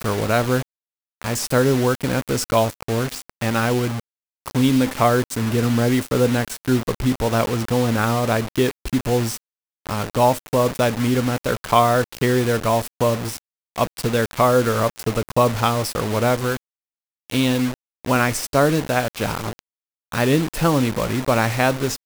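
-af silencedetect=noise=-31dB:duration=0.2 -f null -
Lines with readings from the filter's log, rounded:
silence_start: 0.62
silence_end: 1.22 | silence_duration: 0.59
silence_start: 4.00
silence_end: 4.46 | silence_duration: 0.46
silence_start: 9.37
silence_end: 9.86 | silence_duration: 0.48
silence_start: 13.38
silence_end: 13.76 | silence_duration: 0.38
silence_start: 16.57
silence_end: 17.30 | silence_duration: 0.73
silence_start: 17.74
silence_end: 18.05 | silence_duration: 0.31
silence_start: 19.59
silence_end: 20.12 | silence_duration: 0.53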